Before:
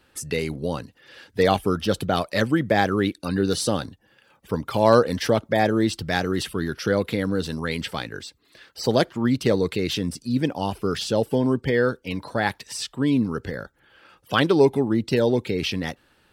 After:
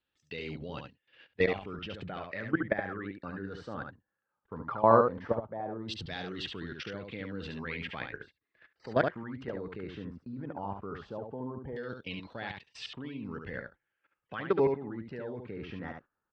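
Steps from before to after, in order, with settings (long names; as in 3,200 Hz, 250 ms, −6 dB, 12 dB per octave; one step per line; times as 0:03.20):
Butterworth low-pass 8,100 Hz
output level in coarse steps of 17 dB
auto-filter low-pass saw down 0.17 Hz 920–3,600 Hz
single-tap delay 71 ms −5.5 dB
noise gate −45 dBFS, range −15 dB
level −6.5 dB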